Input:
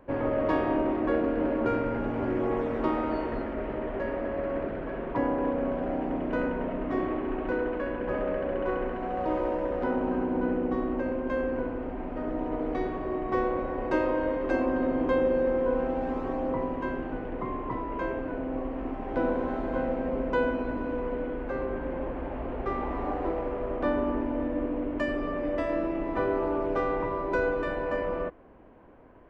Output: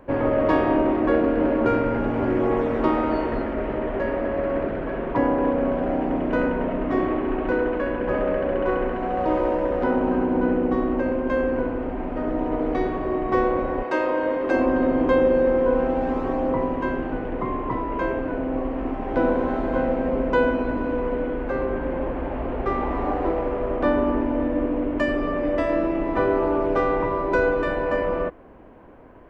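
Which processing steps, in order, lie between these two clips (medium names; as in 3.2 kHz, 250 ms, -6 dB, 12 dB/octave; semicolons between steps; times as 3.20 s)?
13.82–14.55 s: high-pass 750 Hz -> 180 Hz 6 dB/octave; trim +6.5 dB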